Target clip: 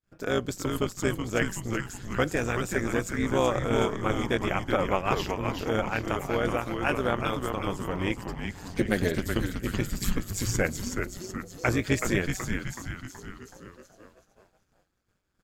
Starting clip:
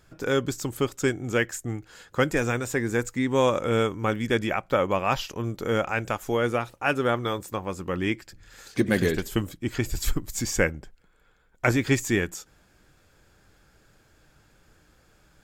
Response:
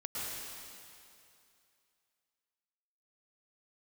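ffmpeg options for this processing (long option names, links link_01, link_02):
-filter_complex "[0:a]tremolo=f=190:d=0.75,asplit=8[link_01][link_02][link_03][link_04][link_05][link_06][link_07][link_08];[link_02]adelay=375,afreqshift=-130,volume=-5dB[link_09];[link_03]adelay=750,afreqshift=-260,volume=-10.4dB[link_10];[link_04]adelay=1125,afreqshift=-390,volume=-15.7dB[link_11];[link_05]adelay=1500,afreqshift=-520,volume=-21.1dB[link_12];[link_06]adelay=1875,afreqshift=-650,volume=-26.4dB[link_13];[link_07]adelay=2250,afreqshift=-780,volume=-31.8dB[link_14];[link_08]adelay=2625,afreqshift=-910,volume=-37.1dB[link_15];[link_01][link_09][link_10][link_11][link_12][link_13][link_14][link_15]amix=inputs=8:normalize=0,agate=range=-33dB:threshold=-49dB:ratio=3:detection=peak"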